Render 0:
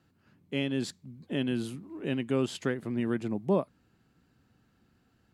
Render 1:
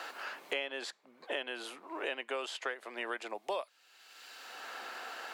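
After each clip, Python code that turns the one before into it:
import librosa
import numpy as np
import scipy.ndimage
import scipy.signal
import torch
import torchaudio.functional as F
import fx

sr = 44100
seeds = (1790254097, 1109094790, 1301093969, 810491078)

y = scipy.signal.sosfilt(scipy.signal.butter(4, 590.0, 'highpass', fs=sr, output='sos'), x)
y = fx.high_shelf(y, sr, hz=5700.0, db=-10.0)
y = fx.band_squash(y, sr, depth_pct=100)
y = y * librosa.db_to_amplitude(3.5)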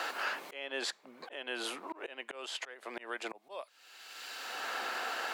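y = fx.auto_swell(x, sr, attack_ms=387.0)
y = y * librosa.db_to_amplitude(7.0)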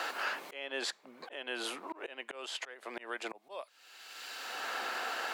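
y = x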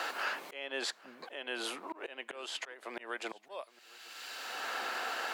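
y = x + 10.0 ** (-23.0 / 20.0) * np.pad(x, (int(812 * sr / 1000.0), 0))[:len(x)]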